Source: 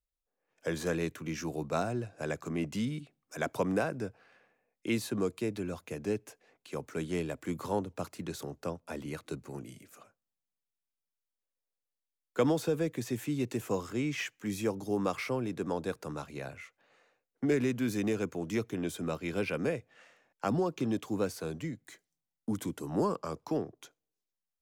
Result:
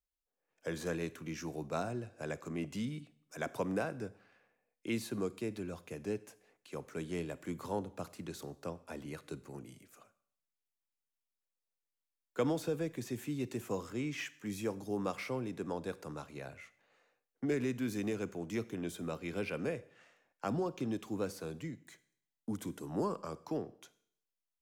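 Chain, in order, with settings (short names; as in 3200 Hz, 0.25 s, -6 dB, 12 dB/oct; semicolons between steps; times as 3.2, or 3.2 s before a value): Schroeder reverb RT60 0.63 s, combs from 31 ms, DRR 17 dB; gain -5 dB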